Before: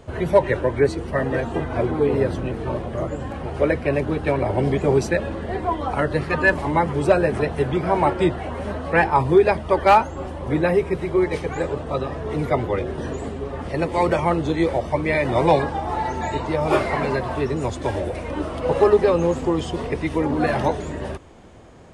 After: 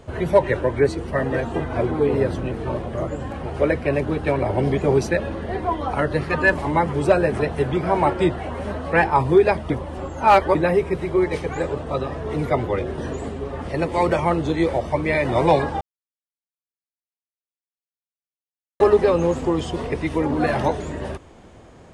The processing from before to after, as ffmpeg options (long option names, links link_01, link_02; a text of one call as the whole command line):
ffmpeg -i in.wav -filter_complex "[0:a]asettb=1/sr,asplit=3[link_01][link_02][link_03];[link_01]atrim=end=4.484[link_04];[link_02]atrim=start=4.48:end=6.27,asetpts=PTS-STARTPTS,afade=type=in:duration=0.004:curve=qsin,afade=type=out:start_time=1.786:duration=0.004:curve=qsin,bandreject=frequency=7700:width=9.4[link_05];[link_03]atrim=start=6.266[link_06];[link_04][link_05]acrossfade=duration=0.004:curve1=hsin:curve2=qsin[link_07];[link_07][link_06]acrossfade=duration=0.004:curve1=qsin:curve2=hsin,asplit=5[link_08][link_09][link_10][link_11][link_12];[link_08]atrim=end=9.702[link_13];[link_09]atrim=start=9.698:end=10.552,asetpts=PTS-STARTPTS,areverse[link_14];[link_10]atrim=start=10.548:end=15.81,asetpts=PTS-STARTPTS,afade=type=out:start_time=5.258:duration=0.004:curve=hsin[link_15];[link_11]atrim=start=15.81:end=18.8,asetpts=PTS-STARTPTS,volume=0[link_16];[link_12]atrim=start=18.8,asetpts=PTS-STARTPTS,afade=type=in:duration=0.004:curve=hsin[link_17];[link_13][link_14]acrossfade=duration=0.004:curve1=hsin:curve2=hsin[link_18];[link_15][link_16][link_17]concat=n=3:v=0:a=1[link_19];[link_18][link_19]acrossfade=duration=0.004:curve1=hsin:curve2=hsin" out.wav